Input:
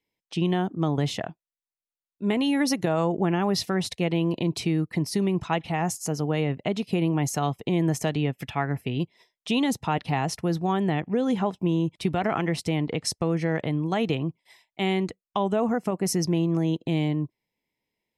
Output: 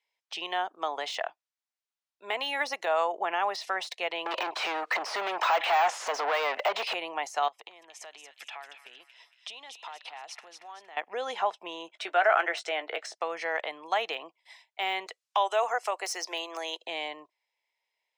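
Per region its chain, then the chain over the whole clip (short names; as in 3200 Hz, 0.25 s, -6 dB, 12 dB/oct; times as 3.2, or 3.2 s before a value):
4.26–6.94 compressor 16:1, threshold -33 dBFS + overdrive pedal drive 38 dB, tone 2000 Hz, clips at -14 dBFS
7.48–10.97 compressor 16:1, threshold -37 dBFS + thin delay 0.231 s, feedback 42%, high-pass 1900 Hz, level -7 dB
11.88–13.15 speaker cabinet 270–8600 Hz, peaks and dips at 350 Hz +5 dB, 630 Hz +6 dB, 990 Hz -6 dB, 1500 Hz +10 dB, 4800 Hz -7 dB + doubler 17 ms -12.5 dB
15.06–16.86 HPF 320 Hz 24 dB/oct + high shelf 2900 Hz +11.5 dB
whole clip: LPF 6700 Hz 12 dB/oct; de-esser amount 100%; HPF 650 Hz 24 dB/oct; gain +3 dB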